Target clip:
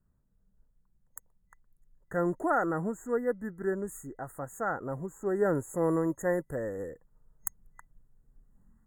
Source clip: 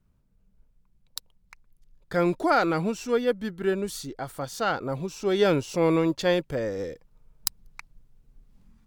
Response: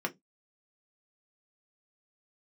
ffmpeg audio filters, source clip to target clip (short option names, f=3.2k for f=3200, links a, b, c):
-filter_complex "[0:a]asettb=1/sr,asplit=3[a][b][c];[a]atrim=end=5.554[d];[b]atrim=start=5.55:end=6.9,asetpts=PTS-STARTPTS,afade=t=in:d=0.004:c=qsin,afade=t=out:st=1.346:d=0.004:c=qsin,equalizer=f=11k:t=o:w=0.86:g=9[e];[c]atrim=start=6.896[f];[d][e]acrossfade=d=0.004:c1=hsin:c2=qsin[g];[g][f]acrossfade=d=0.004:c1=qsin:c2=hsin,afftfilt=real='re*(1-between(b*sr/4096,2000,6500))':imag='im*(1-between(b*sr/4096,2000,6500))':win_size=4096:overlap=0.75,volume=-5.5dB"